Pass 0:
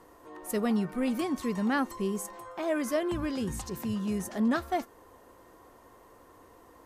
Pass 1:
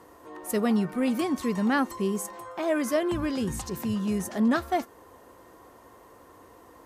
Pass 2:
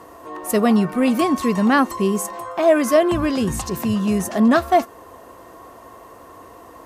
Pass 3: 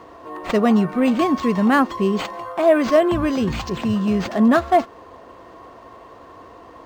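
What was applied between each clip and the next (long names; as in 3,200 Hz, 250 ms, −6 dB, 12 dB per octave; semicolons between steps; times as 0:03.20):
high-pass filter 51 Hz; level +3.5 dB
hollow resonant body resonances 670/1,100/2,700 Hz, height 8 dB; level +8 dB
linearly interpolated sample-rate reduction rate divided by 4×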